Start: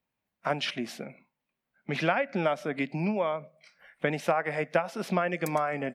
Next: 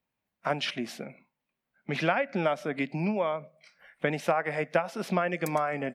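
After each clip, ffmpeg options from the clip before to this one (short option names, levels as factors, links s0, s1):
-af anull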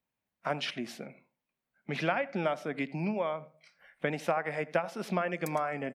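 -filter_complex "[0:a]asplit=2[s0][s1];[s1]adelay=83,lowpass=f=1700:p=1,volume=0.126,asplit=2[s2][s3];[s3]adelay=83,lowpass=f=1700:p=1,volume=0.29,asplit=2[s4][s5];[s5]adelay=83,lowpass=f=1700:p=1,volume=0.29[s6];[s0][s2][s4][s6]amix=inputs=4:normalize=0,volume=0.668"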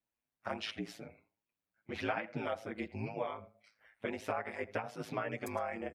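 -filter_complex "[0:a]aeval=exprs='val(0)*sin(2*PI*54*n/s)':c=same,asplit=2[s0][s1];[s1]adelay=7.1,afreqshift=2.3[s2];[s0][s2]amix=inputs=2:normalize=1"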